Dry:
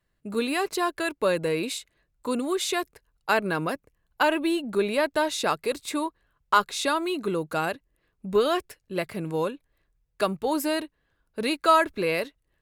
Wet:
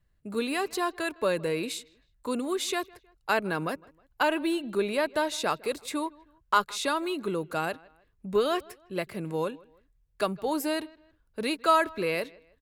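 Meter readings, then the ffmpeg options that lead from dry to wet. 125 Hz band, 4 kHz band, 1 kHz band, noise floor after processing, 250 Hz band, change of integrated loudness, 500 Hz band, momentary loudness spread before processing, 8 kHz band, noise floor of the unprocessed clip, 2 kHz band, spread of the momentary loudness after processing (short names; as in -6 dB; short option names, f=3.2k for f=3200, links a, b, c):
-3.0 dB, -3.0 dB, -3.0 dB, -69 dBFS, -3.0 dB, -3.0 dB, -3.0 dB, 11 LU, -3.0 dB, -75 dBFS, -3.0 dB, 11 LU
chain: -filter_complex "[0:a]acrossover=split=120|6300[a][b][c];[a]acompressor=mode=upward:threshold=-56dB:ratio=2.5[d];[b]asplit=2[e][f];[f]adelay=158,lowpass=f=4.7k:p=1,volume=-23.5dB,asplit=2[g][h];[h]adelay=158,lowpass=f=4.7k:p=1,volume=0.38[i];[e][g][i]amix=inputs=3:normalize=0[j];[d][j][c]amix=inputs=3:normalize=0,volume=-3dB"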